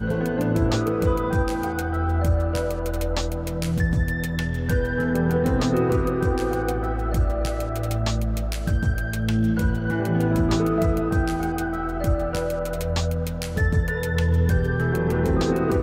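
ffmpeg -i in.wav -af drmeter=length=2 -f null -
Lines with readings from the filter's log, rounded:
Channel 1: DR: 7.7
Overall DR: 7.7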